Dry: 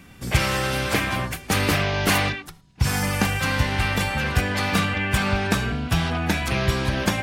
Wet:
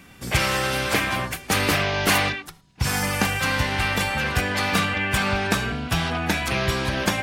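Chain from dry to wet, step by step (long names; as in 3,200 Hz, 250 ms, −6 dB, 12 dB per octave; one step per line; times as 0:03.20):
low-shelf EQ 240 Hz −6 dB
level +1.5 dB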